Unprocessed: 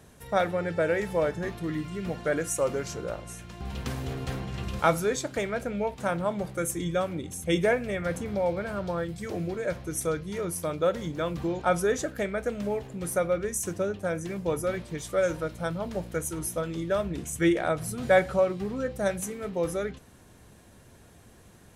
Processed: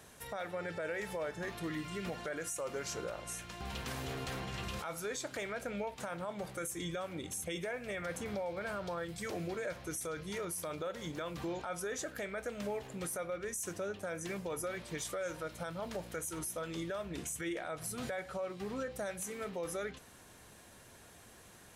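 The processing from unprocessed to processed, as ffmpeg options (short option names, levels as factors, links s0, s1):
-filter_complex "[0:a]asettb=1/sr,asplit=3[s0][s1][s2];[s0]atrim=end=9.984[s3];[s1]atrim=start=9.98:end=10.87,asetpts=PTS-STARTPTS,afade=t=in:d=0.004:c=qsin,afade=t=out:st=0.886:d=0.004:c=qsin,acompressor=threshold=0.0316:ratio=6:attack=3.2:release=140:knee=1:detection=peak[s4];[s2]atrim=start=10.866[s5];[s3][s4]acrossfade=d=0.004:c1=hsin:c2=qsin[s6];[s6][s5]acrossfade=d=0.004:c1=qsin:c2=hsin,lowshelf=f=440:g=-11,acompressor=threshold=0.0141:ratio=3,alimiter=level_in=2.66:limit=0.0631:level=0:latency=1:release=12,volume=0.376,volume=1.26"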